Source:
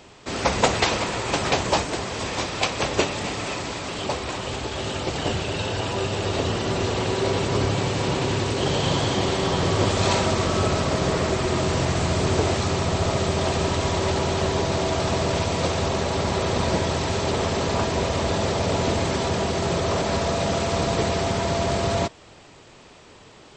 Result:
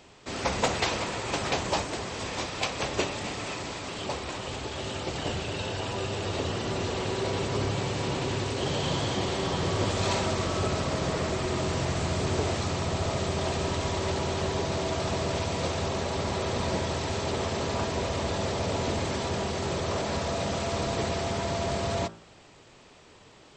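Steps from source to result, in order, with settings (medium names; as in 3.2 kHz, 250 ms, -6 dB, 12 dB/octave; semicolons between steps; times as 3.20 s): de-hum 55.85 Hz, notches 30; in parallel at -10.5 dB: saturation -19 dBFS, distortion -14 dB; on the sum: trim -7.5 dB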